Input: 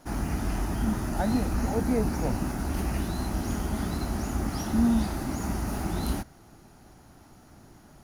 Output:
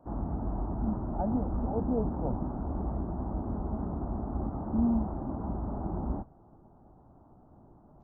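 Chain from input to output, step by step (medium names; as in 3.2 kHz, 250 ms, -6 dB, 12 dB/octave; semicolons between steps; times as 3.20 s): steep low-pass 1.1 kHz 36 dB/octave; peaking EQ 630 Hz +2 dB 0.53 oct; trim -4 dB; Vorbis 32 kbps 16 kHz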